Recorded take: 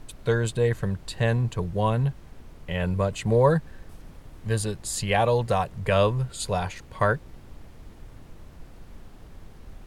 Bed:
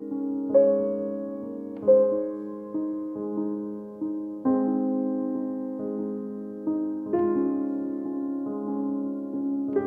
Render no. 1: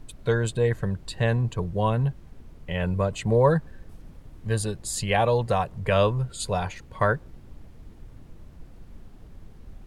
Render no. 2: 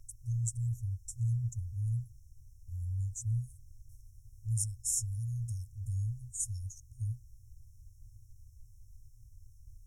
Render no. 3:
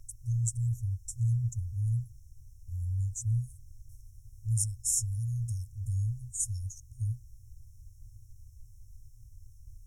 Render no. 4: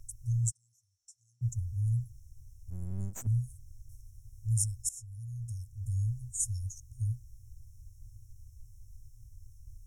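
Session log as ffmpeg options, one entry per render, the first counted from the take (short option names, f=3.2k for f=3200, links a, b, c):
-af "afftdn=nr=6:nf=-47"
-af "afftfilt=real='re*(1-between(b*sr/4096,120,5300))':imag='im*(1-between(b*sr/4096,120,5300))':win_size=4096:overlap=0.75,lowshelf=f=110:g=-10.5"
-af "volume=3.5dB"
-filter_complex "[0:a]asplit=3[a][b][c];[a]afade=t=out:st=0.5:d=0.02[d];[b]bandpass=f=4.5k:t=q:w=4.3,afade=t=in:st=0.5:d=0.02,afade=t=out:st=1.41:d=0.02[e];[c]afade=t=in:st=1.41:d=0.02[f];[d][e][f]amix=inputs=3:normalize=0,asettb=1/sr,asplit=3[g][h][i];[g]atrim=end=2.704[j];[h]atrim=start=2.7:end=3.27,asetpts=PTS-STARTPTS,afade=t=in:d=0.004:c=qsin,afade=t=out:st=0.566:d=0.004:c=qsin,aeval=exprs='max(val(0),0)':c=same[k];[i]atrim=start=3.266[l];[j][k]acrossfade=d=0.004:c1=hsin:c2=qsin[m];[m][l]acrossfade=d=0.004:c1=qsin:c2=hsin,asplit=2[n][o];[n]atrim=end=4.89,asetpts=PTS-STARTPTS,afade=t=out:st=4.886:d=0.004:c=hsin:silence=0.0794328[p];[o]atrim=start=4.89,asetpts=PTS-STARTPTS,afade=t=in:d=1.19:silence=0.0794328[q];[p][q]concat=n=2:v=0:a=1"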